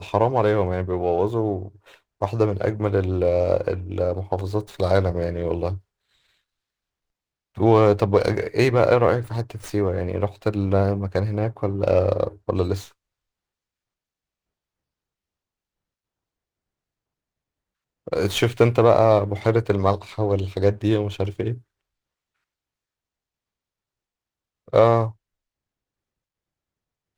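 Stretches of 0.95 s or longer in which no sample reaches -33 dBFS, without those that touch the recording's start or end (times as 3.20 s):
5.78–7.57 s
12.85–18.07 s
21.57–24.73 s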